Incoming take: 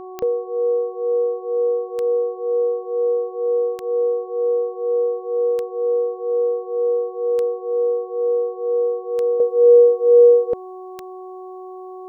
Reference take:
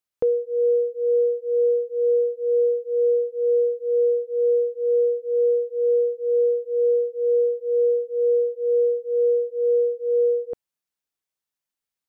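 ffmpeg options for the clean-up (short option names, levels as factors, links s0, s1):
-af "adeclick=t=4,bandreject=f=371.2:t=h:w=4,bandreject=f=742.4:t=h:w=4,bandreject=f=1113.6:t=h:w=4,asetnsamples=n=441:p=0,asendcmd='9.4 volume volume -9.5dB',volume=1"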